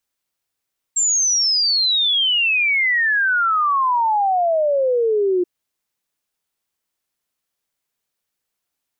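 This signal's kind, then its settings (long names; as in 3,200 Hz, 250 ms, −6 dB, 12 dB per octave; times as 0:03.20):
exponential sine sweep 7,500 Hz → 350 Hz 4.48 s −14.5 dBFS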